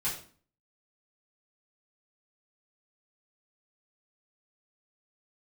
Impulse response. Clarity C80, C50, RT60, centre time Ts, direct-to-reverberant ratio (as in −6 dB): 11.0 dB, 6.5 dB, 0.45 s, 30 ms, −10.5 dB